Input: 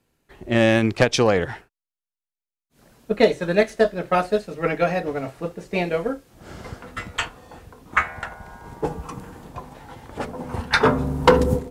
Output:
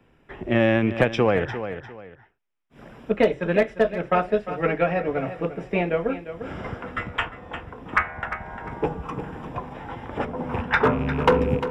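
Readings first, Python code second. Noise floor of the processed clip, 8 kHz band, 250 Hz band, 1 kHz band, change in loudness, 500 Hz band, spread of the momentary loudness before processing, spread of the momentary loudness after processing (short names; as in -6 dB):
-60 dBFS, under -15 dB, -1.0 dB, -1.5 dB, -2.5 dB, -1.5 dB, 21 LU, 15 LU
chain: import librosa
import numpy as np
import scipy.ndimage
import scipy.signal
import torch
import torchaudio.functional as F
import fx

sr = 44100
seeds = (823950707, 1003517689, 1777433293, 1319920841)

y = fx.rattle_buzz(x, sr, strikes_db=-25.0, level_db=-26.0)
y = scipy.signal.savgol_filter(y, 25, 4, mode='constant')
y = np.clip(y, -10.0 ** (-7.0 / 20.0), 10.0 ** (-7.0 / 20.0))
y = fx.echo_feedback(y, sr, ms=350, feedback_pct=17, wet_db=-14)
y = fx.band_squash(y, sr, depth_pct=40)
y = y * 10.0 ** (-1.0 / 20.0)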